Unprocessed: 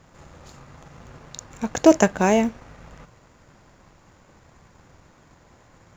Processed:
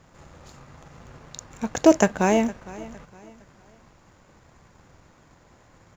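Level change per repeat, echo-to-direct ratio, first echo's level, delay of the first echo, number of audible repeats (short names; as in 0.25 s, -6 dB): -9.5 dB, -18.5 dB, -19.0 dB, 0.46 s, 2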